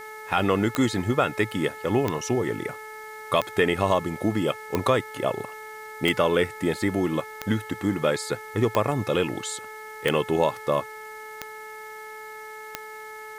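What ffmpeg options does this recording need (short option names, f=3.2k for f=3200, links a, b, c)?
-af "adeclick=t=4,bandreject=f=432.6:t=h:w=4,bandreject=f=865.2:t=h:w=4,bandreject=f=1.2978k:t=h:w=4,bandreject=f=1.7304k:t=h:w=4,bandreject=f=2.163k:t=h:w=4,agate=range=-21dB:threshold=-32dB"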